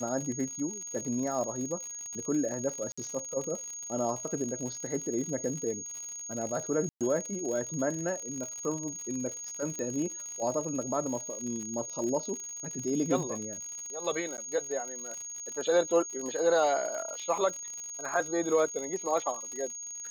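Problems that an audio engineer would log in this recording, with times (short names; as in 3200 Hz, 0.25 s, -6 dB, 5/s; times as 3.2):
crackle 85/s -36 dBFS
tone 6600 Hz -38 dBFS
2.92–2.98 gap 55 ms
6.89–7.01 gap 0.117 s
9.79 pop -24 dBFS
14.37–14.38 gap 9.6 ms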